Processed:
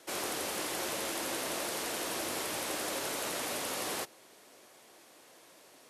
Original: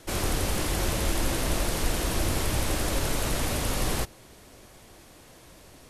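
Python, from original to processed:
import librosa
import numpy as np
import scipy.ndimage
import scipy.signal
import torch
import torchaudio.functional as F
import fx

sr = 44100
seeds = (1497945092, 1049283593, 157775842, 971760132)

y = scipy.signal.sosfilt(scipy.signal.butter(2, 350.0, 'highpass', fs=sr, output='sos'), x)
y = y * librosa.db_to_amplitude(-4.5)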